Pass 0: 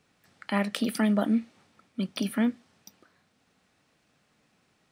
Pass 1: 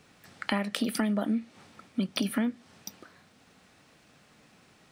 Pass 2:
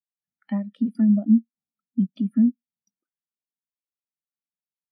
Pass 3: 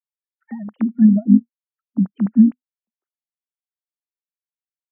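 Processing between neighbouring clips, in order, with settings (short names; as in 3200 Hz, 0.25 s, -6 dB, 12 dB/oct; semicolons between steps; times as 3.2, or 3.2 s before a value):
compressor 6:1, threshold -35 dBFS, peak gain reduction 14 dB; gain +9 dB
spectral expander 2.5:1
sine-wave speech; gain +5.5 dB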